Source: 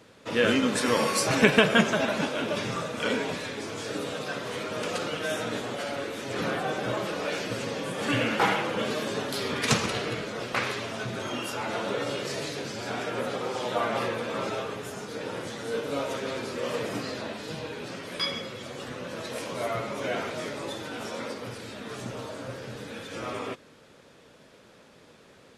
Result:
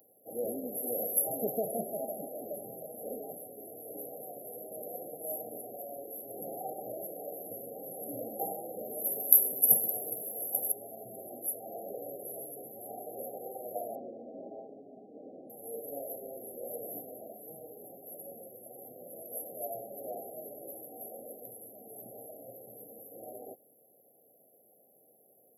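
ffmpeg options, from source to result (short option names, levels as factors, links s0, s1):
-filter_complex "[0:a]asettb=1/sr,asplit=3[s0][s1][s2];[s0]atrim=end=9.044[s3];[s1]atrim=start=9.04:end=10.72,asetpts=PTS-STARTPTS,afade=t=in:d=0.004:c=qsin,afade=t=out:st=1.676:d=0.004:c=qsin,aemphasis=mode=production:type=50fm[s4];[s2]atrim=start=10.716[s5];[s3][s4]acrossfade=d=0.004:c1=hsin:c2=qsin[s6];[s6][s5]acrossfade=d=0.004:c1=qsin:c2=hsin,asettb=1/sr,asplit=3[s7][s8][s9];[s7]atrim=end=13.954[s10];[s8]atrim=start=13.95:end=15.5,asetpts=PTS-STARTPTS,afade=t=in:d=0.004:c=qsin,afade=t=out:st=1.546:d=0.004:c=qsin,highpass=160,equalizer=f=260:t=q:w=4:g=10,equalizer=f=480:t=q:w=4:g=-6,equalizer=f=760:t=q:w=4:g=-4,lowpass=f=2400:w=0.5412,lowpass=f=2400:w=1.3066[s11];[s9]atrim=start=15.496[s12];[s10][s11]acrossfade=d=0.004:c1=hsin:c2=qsin[s13];[s13][s12]acrossfade=d=0.004:c1=qsin:c2=hsin,afftfilt=real='re*(1-between(b*sr/4096,800,11000))':imag='im*(1-between(b*sr/4096,800,11000))':win_size=4096:overlap=0.75,aderivative,volume=4.47"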